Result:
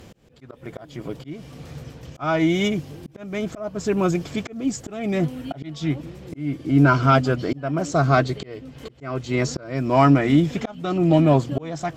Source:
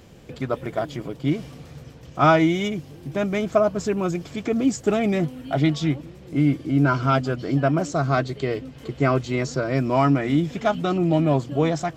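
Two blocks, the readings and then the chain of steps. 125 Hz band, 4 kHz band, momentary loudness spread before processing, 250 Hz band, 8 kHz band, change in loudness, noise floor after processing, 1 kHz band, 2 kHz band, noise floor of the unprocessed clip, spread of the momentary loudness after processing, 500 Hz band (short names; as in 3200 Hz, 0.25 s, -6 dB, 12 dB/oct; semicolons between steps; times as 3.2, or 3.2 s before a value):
+1.0 dB, +0.5 dB, 11 LU, +0.5 dB, +1.0 dB, +1.0 dB, -48 dBFS, +0.5 dB, +0.5 dB, -44 dBFS, 21 LU, -1.0 dB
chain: added harmonics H 2 -21 dB, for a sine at -5 dBFS; auto swell 0.459 s; gain +4 dB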